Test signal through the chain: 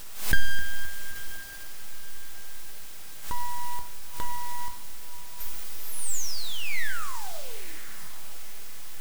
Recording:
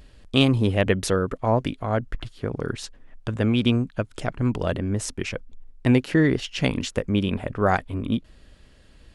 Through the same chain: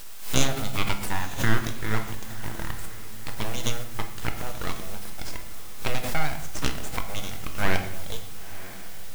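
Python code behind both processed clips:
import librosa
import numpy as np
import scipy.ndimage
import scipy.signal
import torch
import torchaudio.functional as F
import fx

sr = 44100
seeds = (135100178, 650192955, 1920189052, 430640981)

p1 = fx.low_shelf(x, sr, hz=140.0, db=-8.5)
p2 = fx.transient(p1, sr, attack_db=7, sustain_db=-9)
p3 = fx.graphic_eq_10(p2, sr, hz=(125, 1000, 4000, 8000), db=(-9, 10, 11, -5))
p4 = fx.transient(p3, sr, attack_db=-3, sustain_db=4)
p5 = fx.dmg_noise_colour(p4, sr, seeds[0], colour='white', level_db=-34.0)
p6 = np.abs(p5)
p7 = p6 + fx.echo_diffused(p6, sr, ms=980, feedback_pct=41, wet_db=-15, dry=0)
p8 = fx.room_shoebox(p7, sr, seeds[1], volume_m3=220.0, walls='mixed', distance_m=0.54)
p9 = fx.pre_swell(p8, sr, db_per_s=110.0)
y = F.gain(torch.from_numpy(p9), -9.0).numpy()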